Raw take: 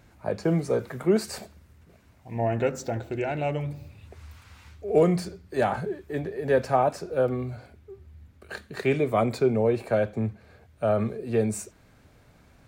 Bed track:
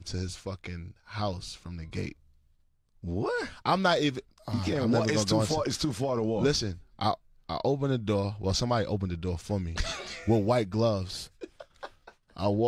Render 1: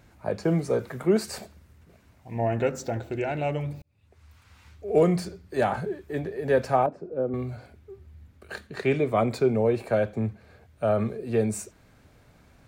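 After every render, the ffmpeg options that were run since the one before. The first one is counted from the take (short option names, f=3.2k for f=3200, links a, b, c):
-filter_complex "[0:a]asettb=1/sr,asplit=3[a][b][c];[a]atrim=end=6.864[d];[b]atrim=start=6.86:end=7.34,asetpts=PTS-STARTPTS,afade=t=in:d=0.004:c=qsin,afade=t=out:st=0.476:d=0.004:c=qsin,bandpass=f=280:t=q:w=0.98[e];[c]atrim=start=7.336[f];[d][e]acrossfade=d=0.004:c1=hsin:c2=qsin[g];[g][f]acrossfade=d=0.004:c1=qsin:c2=hsin,asettb=1/sr,asplit=3[h][i][j];[h]atrim=end=8.674[k];[i]atrim=start=8.67:end=9.34,asetpts=PTS-STARTPTS,afade=t=in:d=0.004:c=qsin,afade=t=out:st=0.666:d=0.004:c=qsin,highshelf=f=11k:g=-12[l];[j]atrim=start=9.336[m];[k][l]acrossfade=d=0.004:c1=hsin:c2=qsin[n];[n][m]acrossfade=d=0.004:c1=qsin:c2=hsin,asplit=2[o][p];[o]atrim=end=3.82,asetpts=PTS-STARTPTS,afade=t=out:st=3.816:d=0.004:c=hsin[q];[p]atrim=start=3.82,asetpts=PTS-STARTPTS,afade=t=in:d=1.21[r];[q][r]concat=n=2:v=0:a=1"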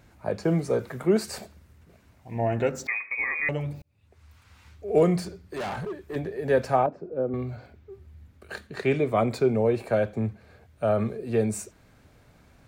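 -filter_complex "[0:a]asettb=1/sr,asplit=3[a][b][c];[a]atrim=end=2.874[d];[b]atrim=start=2.87:end=3.49,asetpts=PTS-STARTPTS,afade=t=in:d=0.004:c=qsin,afade=t=out:st=0.616:d=0.004:c=qsin,lowpass=f=2.2k:t=q:w=0.5098,lowpass=f=2.2k:t=q:w=0.6013,lowpass=f=2.2k:t=q:w=0.9,lowpass=f=2.2k:t=q:w=2.563,afreqshift=-2600[e];[c]atrim=start=3.486[f];[d][e]acrossfade=d=0.004:c1=hsin:c2=qsin[g];[g][f]acrossfade=d=0.004:c1=qsin:c2=hsin,asettb=1/sr,asplit=3[h][i][j];[h]atrim=end=5.214[k];[i]atrim=start=5.21:end=6.16,asetpts=PTS-STARTPTS,afade=t=in:d=0.004:c=qsin,afade=t=out:st=0.946:d=0.004:c=qsin,volume=29.5dB,asoftclip=hard,volume=-29.5dB[l];[j]atrim=start=6.156[m];[k][l]acrossfade=d=0.004:c1=hsin:c2=qsin[n];[n][m]acrossfade=d=0.004:c1=qsin:c2=hsin,asettb=1/sr,asplit=3[o][p][q];[o]atrim=end=6.814[r];[p]atrim=start=6.81:end=7.92,asetpts=PTS-STARTPTS,afade=t=in:d=0.004:c=qsin,afade=t=out:st=1.106:d=0.004:c=qsin,equalizer=f=9.9k:t=o:w=0.77:g=-12[s];[q]atrim=start=7.916[t];[r][s]acrossfade=d=0.004:c1=hsin:c2=qsin[u];[u][t]acrossfade=d=0.004:c1=qsin:c2=hsin"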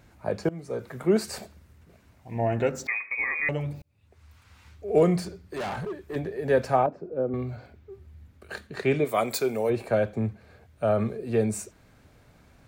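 -filter_complex "[0:a]asplit=3[a][b][c];[a]afade=t=out:st=9.04:d=0.02[d];[b]aemphasis=mode=production:type=riaa,afade=t=in:st=9.04:d=0.02,afade=t=out:st=9.69:d=0.02[e];[c]afade=t=in:st=9.69:d=0.02[f];[d][e][f]amix=inputs=3:normalize=0,asplit=2[g][h];[g]atrim=end=0.49,asetpts=PTS-STARTPTS,afade=t=out:st=0.486:d=0.004:c=hsin:silence=0.0944061[i];[h]atrim=start=0.49,asetpts=PTS-STARTPTS,afade=t=in:d=0.64:silence=0.0944061[j];[i][j]concat=n=2:v=0:a=1"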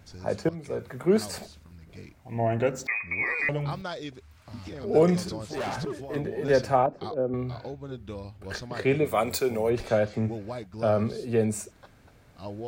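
-filter_complex "[1:a]volume=-11dB[a];[0:a][a]amix=inputs=2:normalize=0"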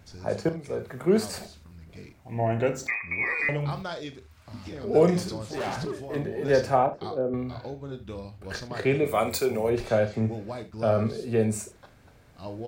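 -af "aecho=1:1:36|75:0.299|0.168"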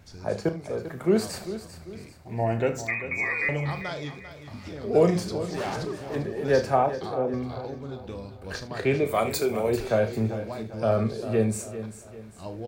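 -af "aecho=1:1:395|790|1185|1580:0.237|0.0949|0.0379|0.0152"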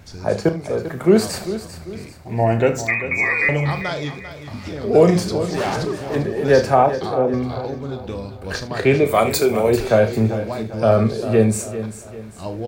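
-af "volume=8.5dB,alimiter=limit=-3dB:level=0:latency=1"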